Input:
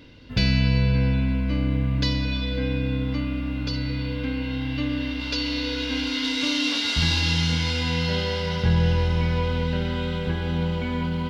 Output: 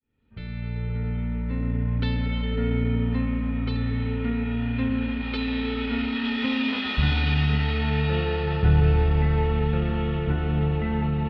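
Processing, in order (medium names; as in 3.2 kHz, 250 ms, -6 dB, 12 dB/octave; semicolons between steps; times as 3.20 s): fade-in on the opening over 2.78 s; distance through air 310 m; pitch shift -2 st; trim +2 dB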